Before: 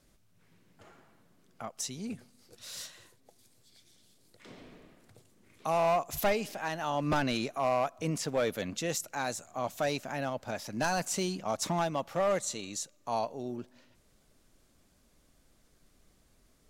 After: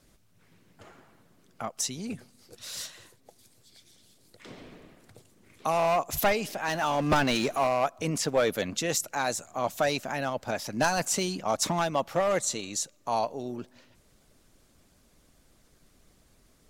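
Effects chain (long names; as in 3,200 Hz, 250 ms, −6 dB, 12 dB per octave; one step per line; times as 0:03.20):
0:06.68–0:07.67: power curve on the samples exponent 0.7
harmonic and percussive parts rebalanced harmonic −5 dB
level +6.5 dB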